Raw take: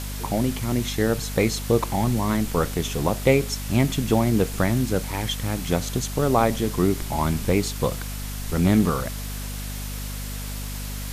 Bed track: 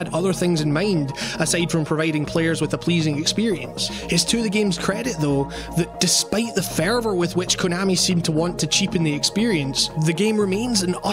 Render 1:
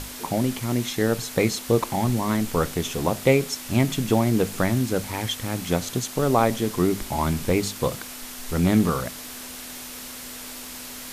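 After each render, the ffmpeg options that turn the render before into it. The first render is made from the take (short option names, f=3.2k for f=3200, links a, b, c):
-af "bandreject=f=50:t=h:w=6,bandreject=f=100:t=h:w=6,bandreject=f=150:t=h:w=6,bandreject=f=200:t=h:w=6"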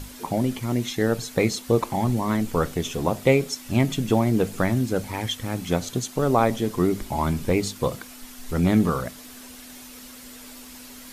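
-af "afftdn=nr=8:nf=-38"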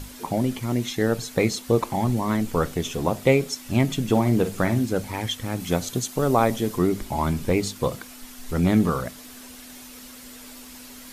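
-filter_complex "[0:a]asettb=1/sr,asplit=3[a][b][c];[a]atrim=end=4.104[d];[b]atrim=start=4.1:end=4.85,asetpts=PTS-STARTPTS,afade=t=in:d=0.004:c=qsin,afade=t=out:st=0.746:d=0.004:c=qsin,asplit=2[e][f];[f]adelay=50,volume=-10dB[g];[e][g]amix=inputs=2:normalize=0,atrim=end_sample=33075[h];[c]atrim=start=4.846[i];[d][h]acrossfade=d=0.004:c1=hsin:c2=qsin[j];[j][i]acrossfade=d=0.004:c1=qsin:c2=hsin,asettb=1/sr,asplit=3[k][l][m];[k]atrim=end=5.604[n];[l]atrim=start=5.6:end=6.78,asetpts=PTS-STARTPTS,afade=t=in:d=0.004:c=qsin,afade=t=out:st=1.176:d=0.004:c=qsin,highshelf=f=7.6k:g=5.5[o];[m]atrim=start=6.776[p];[n][o]acrossfade=d=0.004:c1=hsin:c2=qsin[q];[q][p]acrossfade=d=0.004:c1=qsin:c2=hsin"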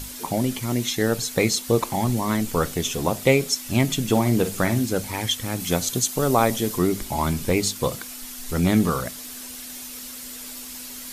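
-af "highshelf=f=3.1k:g=9"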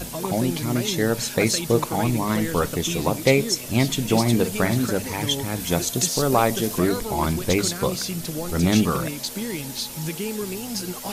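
-filter_complex "[1:a]volume=-10dB[a];[0:a][a]amix=inputs=2:normalize=0"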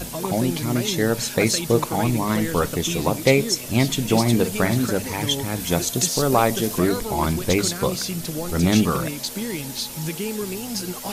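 -af "volume=1dB"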